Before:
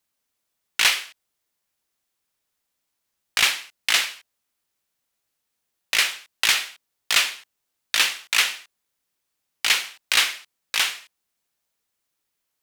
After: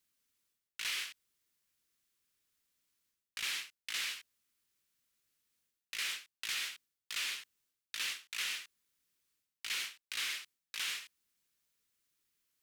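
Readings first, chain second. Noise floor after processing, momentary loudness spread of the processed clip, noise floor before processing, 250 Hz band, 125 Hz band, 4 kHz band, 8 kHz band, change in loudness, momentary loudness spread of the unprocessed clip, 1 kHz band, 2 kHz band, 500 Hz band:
under -85 dBFS, 9 LU, -79 dBFS, under -15 dB, n/a, -16.5 dB, -16.0 dB, -17.0 dB, 12 LU, -20.5 dB, -17.0 dB, -22.0 dB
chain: bell 740 Hz -11 dB 1 oct; reverse; compressor 8:1, threshold -34 dBFS, peak gain reduction 19.5 dB; reverse; gain -2 dB

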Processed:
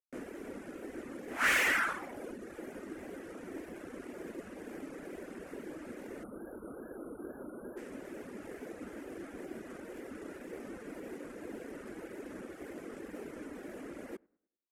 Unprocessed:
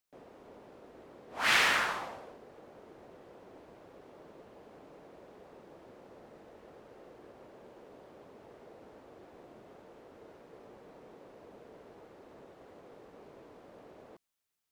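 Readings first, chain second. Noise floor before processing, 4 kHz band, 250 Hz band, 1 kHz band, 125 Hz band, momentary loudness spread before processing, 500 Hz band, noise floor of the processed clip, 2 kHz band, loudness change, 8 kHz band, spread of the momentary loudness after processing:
-57 dBFS, -7.5 dB, +10.5 dB, -3.0 dB, +3.0 dB, 20 LU, +4.5 dB, -52 dBFS, 0.0 dB, -11.0 dB, -1.0 dB, 11 LU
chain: CVSD 64 kbps; in parallel at -2 dB: negative-ratio compressor -50 dBFS, ratio -1; on the sum: band shelf 690 Hz -14.5 dB; overloaded stage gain 29 dB; spectral delete 6.24–7.77, 1600–9400 Hz; dark delay 0.1 s, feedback 37%, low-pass 1700 Hz, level -16.5 dB; reverb removal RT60 0.83 s; wow and flutter 120 cents; graphic EQ 125/250/500/1000/2000/4000 Hz -10/+4/+10/+3/+4/-10 dB; gain +3.5 dB

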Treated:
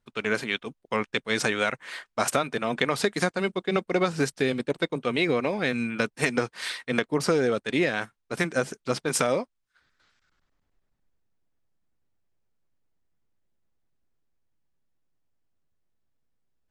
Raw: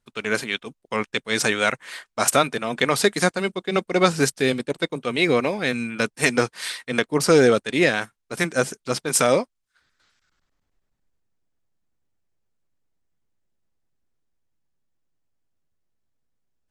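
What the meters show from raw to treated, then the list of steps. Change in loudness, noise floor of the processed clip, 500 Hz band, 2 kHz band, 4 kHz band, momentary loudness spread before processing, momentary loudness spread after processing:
-5.0 dB, -78 dBFS, -5.0 dB, -4.5 dB, -5.5 dB, 9 LU, 6 LU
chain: LPF 4000 Hz 6 dB/oct; compressor, threshold -20 dBFS, peak gain reduction 9 dB

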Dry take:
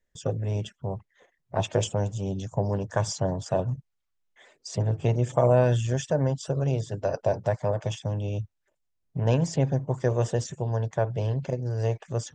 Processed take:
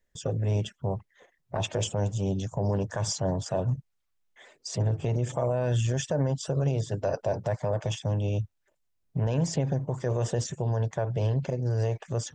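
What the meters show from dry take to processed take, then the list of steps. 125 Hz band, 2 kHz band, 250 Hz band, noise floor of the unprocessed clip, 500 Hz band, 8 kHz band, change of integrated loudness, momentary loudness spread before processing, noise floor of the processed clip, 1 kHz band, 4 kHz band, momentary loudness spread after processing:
-1.0 dB, -2.5 dB, -1.0 dB, -77 dBFS, -3.5 dB, +1.5 dB, -2.0 dB, 9 LU, -75 dBFS, -4.0 dB, +1.5 dB, 6 LU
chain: limiter -20 dBFS, peak gain reduction 11 dB; gain +2 dB

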